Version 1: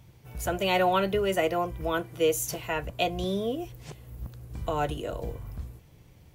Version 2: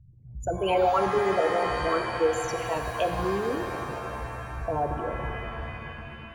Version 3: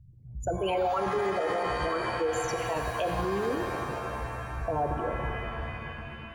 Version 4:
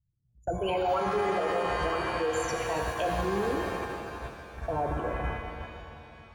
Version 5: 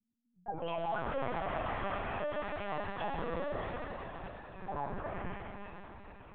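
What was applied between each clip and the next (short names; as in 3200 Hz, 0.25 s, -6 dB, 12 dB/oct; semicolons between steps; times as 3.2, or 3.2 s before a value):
formant sharpening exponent 3; LPF 4900 Hz 12 dB/oct; shimmer reverb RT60 3.2 s, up +7 st, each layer -2 dB, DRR 5.5 dB
limiter -20.5 dBFS, peak gain reduction 8 dB
gate -32 dBFS, range -23 dB; shimmer reverb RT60 2.9 s, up +7 st, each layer -8 dB, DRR 5.5 dB; gain -1 dB
frequency shift +120 Hz; on a send: diffused feedback echo 0.469 s, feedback 55%, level -11 dB; on the sum: LPC vocoder at 8 kHz pitch kept; gain -8 dB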